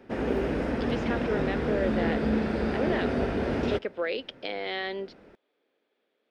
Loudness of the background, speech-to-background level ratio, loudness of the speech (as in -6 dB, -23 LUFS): -29.0 LUFS, -5.0 dB, -34.0 LUFS